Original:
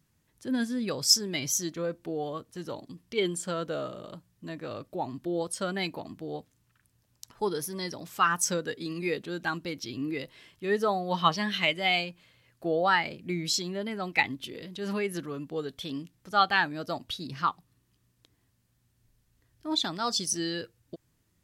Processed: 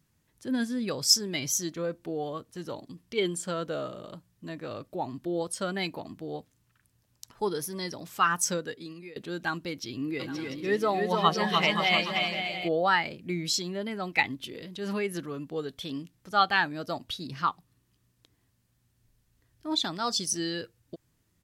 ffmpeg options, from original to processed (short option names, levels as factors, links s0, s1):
-filter_complex "[0:a]asplit=3[s0][s1][s2];[s0]afade=t=out:st=10.19:d=0.02[s3];[s1]aecho=1:1:300|525|693.8|820.3|915.2|986.4:0.631|0.398|0.251|0.158|0.1|0.0631,afade=t=in:st=10.19:d=0.02,afade=t=out:st=12.67:d=0.02[s4];[s2]afade=t=in:st=12.67:d=0.02[s5];[s3][s4][s5]amix=inputs=3:normalize=0,asplit=2[s6][s7];[s6]atrim=end=9.16,asetpts=PTS-STARTPTS,afade=t=out:st=8.49:d=0.67:silence=0.0749894[s8];[s7]atrim=start=9.16,asetpts=PTS-STARTPTS,afade=t=in:d=0.004:c=hsin:silence=0.0749894[s9];[s8][s9]concat=n=2:v=0:a=1"